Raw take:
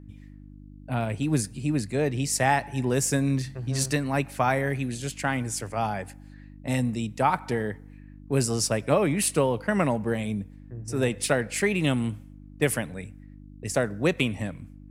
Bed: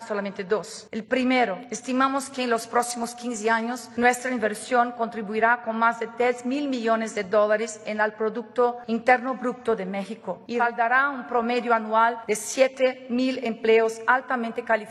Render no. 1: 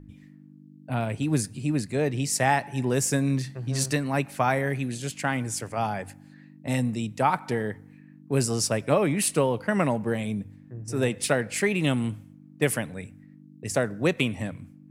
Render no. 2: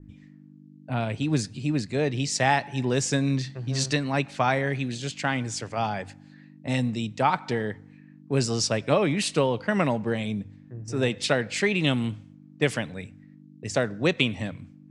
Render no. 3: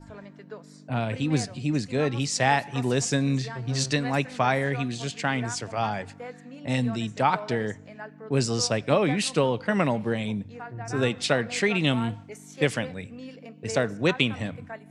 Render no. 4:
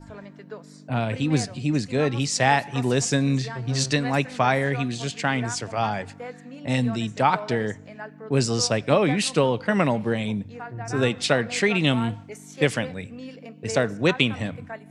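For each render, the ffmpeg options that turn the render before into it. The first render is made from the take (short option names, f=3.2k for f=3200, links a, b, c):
-af "bandreject=f=50:t=h:w=4,bandreject=f=100:t=h:w=4"
-af "lowpass=f=7.3k:w=0.5412,lowpass=f=7.3k:w=1.3066,adynamicequalizer=threshold=0.00447:dfrequency=3700:dqfactor=1.5:tfrequency=3700:tqfactor=1.5:attack=5:release=100:ratio=0.375:range=3.5:mode=boostabove:tftype=bell"
-filter_complex "[1:a]volume=-17.5dB[a];[0:a][a]amix=inputs=2:normalize=0"
-af "volume=2.5dB"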